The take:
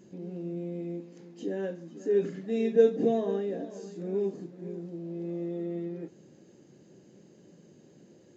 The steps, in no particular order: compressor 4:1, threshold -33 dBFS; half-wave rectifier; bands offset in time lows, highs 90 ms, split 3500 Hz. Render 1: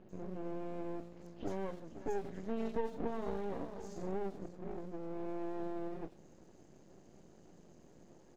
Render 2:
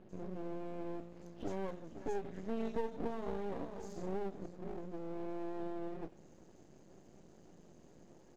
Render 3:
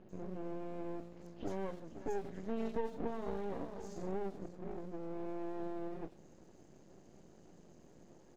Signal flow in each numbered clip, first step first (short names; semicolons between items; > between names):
half-wave rectifier > compressor > bands offset in time; compressor > bands offset in time > half-wave rectifier; compressor > half-wave rectifier > bands offset in time